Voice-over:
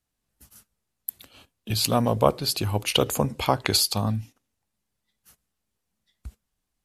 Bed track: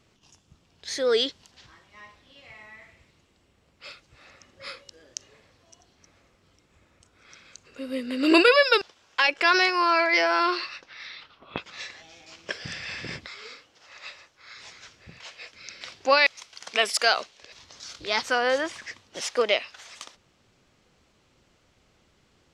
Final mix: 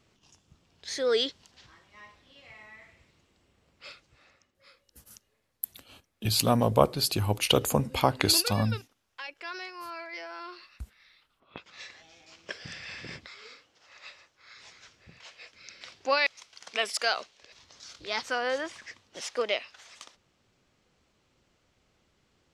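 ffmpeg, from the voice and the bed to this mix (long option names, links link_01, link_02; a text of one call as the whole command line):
ffmpeg -i stem1.wav -i stem2.wav -filter_complex "[0:a]adelay=4550,volume=-1.5dB[link_01];[1:a]volume=10dB,afade=type=out:start_time=3.88:duration=0.65:silence=0.158489,afade=type=in:start_time=11.33:duration=0.57:silence=0.223872[link_02];[link_01][link_02]amix=inputs=2:normalize=0" out.wav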